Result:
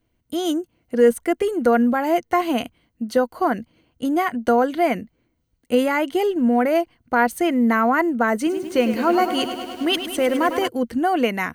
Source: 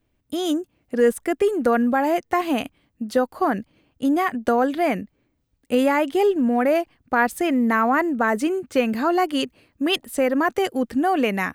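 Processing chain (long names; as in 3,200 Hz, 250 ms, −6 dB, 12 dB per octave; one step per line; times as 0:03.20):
EQ curve with evenly spaced ripples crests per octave 1.9, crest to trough 6 dB
0:08.36–0:10.68: feedback echo at a low word length 103 ms, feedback 80%, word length 7 bits, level −10 dB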